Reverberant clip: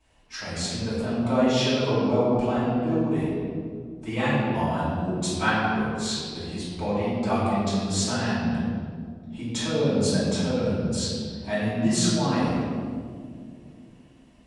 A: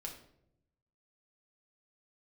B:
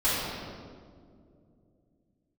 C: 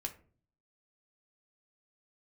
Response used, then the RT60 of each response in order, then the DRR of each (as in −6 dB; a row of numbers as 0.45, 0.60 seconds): B; 0.75, 2.3, 0.45 seconds; −0.5, −12.0, 3.0 decibels